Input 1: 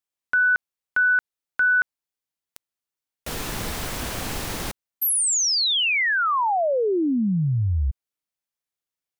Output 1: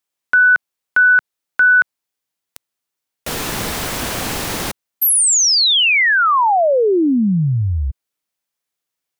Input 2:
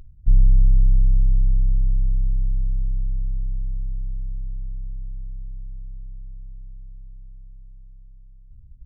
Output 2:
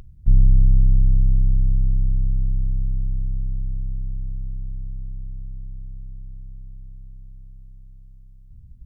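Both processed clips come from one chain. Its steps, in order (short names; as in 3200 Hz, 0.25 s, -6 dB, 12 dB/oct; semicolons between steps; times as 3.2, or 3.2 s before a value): low shelf 78 Hz -9.5 dB; gain +8 dB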